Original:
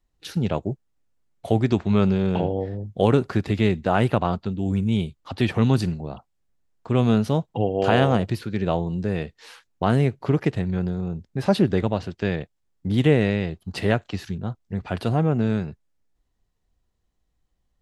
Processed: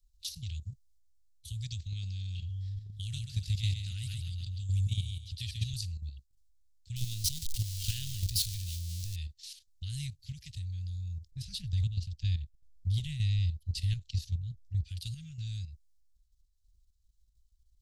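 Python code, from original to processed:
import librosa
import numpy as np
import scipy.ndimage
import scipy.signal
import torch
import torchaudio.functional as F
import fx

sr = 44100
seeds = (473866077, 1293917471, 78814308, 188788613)

y = fx.echo_feedback(x, sr, ms=135, feedback_pct=32, wet_db=-5, at=(2.63, 5.73))
y = fx.zero_step(y, sr, step_db=-24.5, at=(6.96, 9.16))
y = fx.tilt_eq(y, sr, slope=-1.5, at=(11.31, 14.85))
y = scipy.signal.sosfilt(scipy.signal.cheby2(4, 80, [310.0, 1000.0], 'bandstop', fs=sr, output='sos'), y)
y = fx.high_shelf(y, sr, hz=3300.0, db=-3.5)
y = fx.level_steps(y, sr, step_db=9)
y = y * 10.0 ** (8.5 / 20.0)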